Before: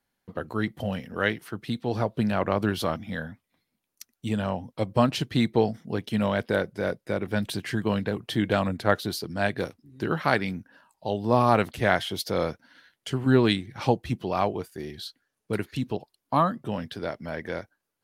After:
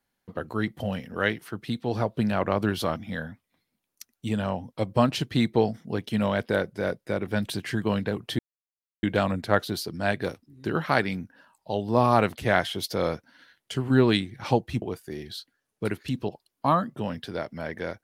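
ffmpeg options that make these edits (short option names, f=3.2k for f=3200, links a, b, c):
-filter_complex "[0:a]asplit=3[a][b][c];[a]atrim=end=8.39,asetpts=PTS-STARTPTS,afade=t=out:st=8.386:d=0.004:c=hsin,apad=pad_dur=0.64[d];[b]atrim=start=8.39:end=14.182,asetpts=PTS-STARTPTS,afade=t=in:d=0.004:c=hsin[e];[c]atrim=start=14.498[f];[d][e]concat=n=2:v=0:a=1[g];[g][f]acrossfade=d=0.004:c1=hsin:c2=hsin"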